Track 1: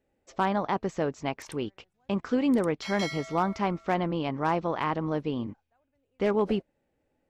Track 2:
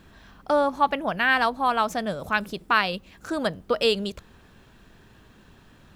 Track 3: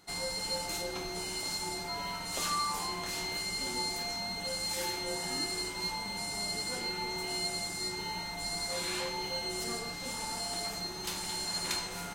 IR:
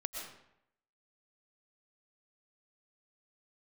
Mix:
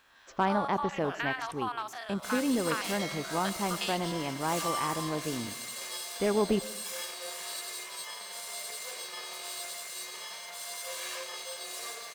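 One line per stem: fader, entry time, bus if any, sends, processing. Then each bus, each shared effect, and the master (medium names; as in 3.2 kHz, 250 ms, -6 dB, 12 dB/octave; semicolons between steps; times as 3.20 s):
-1.0 dB, 0.00 s, send -15 dB, auto duck -6 dB, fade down 1.80 s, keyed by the second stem
-3.5 dB, 0.00 s, send -19.5 dB, spectrogram pixelated in time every 50 ms; high-pass 820 Hz 24 dB/octave; compression 6:1, threshold -28 dBFS, peak gain reduction 11.5 dB
-3.0 dB, 2.15 s, send -7 dB, comb filter that takes the minimum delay 1.8 ms; high-pass 530 Hz 12 dB/octave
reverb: on, RT60 0.75 s, pre-delay 80 ms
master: none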